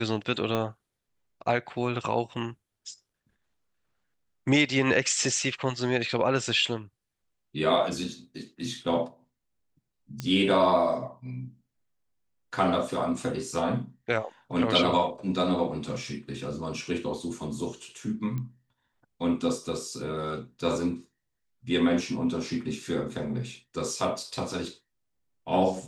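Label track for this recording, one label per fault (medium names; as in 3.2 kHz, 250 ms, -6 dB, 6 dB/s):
0.550000	0.550000	pop -15 dBFS
10.200000	10.200000	pop -18 dBFS
18.380000	18.380000	pop -23 dBFS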